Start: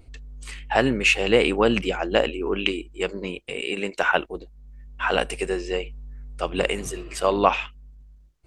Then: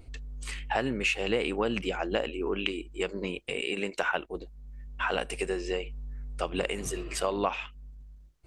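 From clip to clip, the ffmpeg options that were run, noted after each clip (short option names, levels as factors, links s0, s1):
-af "acompressor=threshold=0.0355:ratio=2.5"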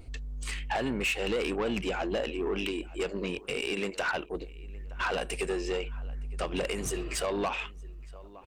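-filter_complex "[0:a]asplit=2[s0][s1];[s1]asoftclip=type=hard:threshold=0.0473,volume=0.355[s2];[s0][s2]amix=inputs=2:normalize=0,asplit=2[s3][s4];[s4]adelay=915,lowpass=f=3100:p=1,volume=0.0668,asplit=2[s5][s6];[s6]adelay=915,lowpass=f=3100:p=1,volume=0.38[s7];[s3][s5][s7]amix=inputs=3:normalize=0,asoftclip=type=tanh:threshold=0.0631"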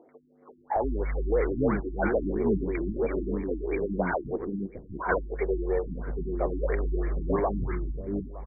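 -filter_complex "[0:a]acrossover=split=320|1000[s0][s1][s2];[s2]adelay=90[s3];[s0]adelay=760[s4];[s4][s1][s3]amix=inputs=3:normalize=0,acrusher=bits=5:mode=log:mix=0:aa=0.000001,afftfilt=real='re*lt(b*sr/1024,340*pow(2400/340,0.5+0.5*sin(2*PI*3*pts/sr)))':imag='im*lt(b*sr/1024,340*pow(2400/340,0.5+0.5*sin(2*PI*3*pts/sr)))':win_size=1024:overlap=0.75,volume=2.37"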